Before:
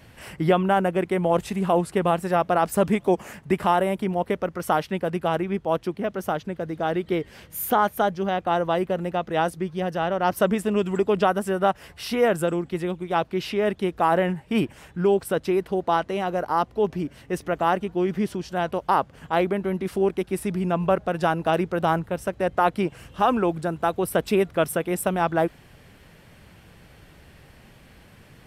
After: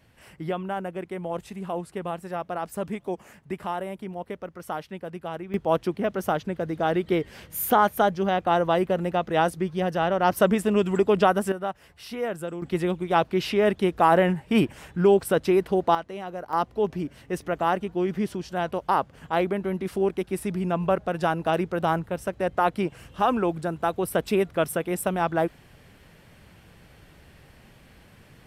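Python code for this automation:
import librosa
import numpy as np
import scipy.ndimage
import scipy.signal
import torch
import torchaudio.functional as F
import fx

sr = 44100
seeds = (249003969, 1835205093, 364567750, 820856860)

y = fx.gain(x, sr, db=fx.steps((0.0, -10.0), (5.54, 1.0), (11.52, -9.0), (12.62, 2.0), (15.95, -9.0), (16.53, -2.0)))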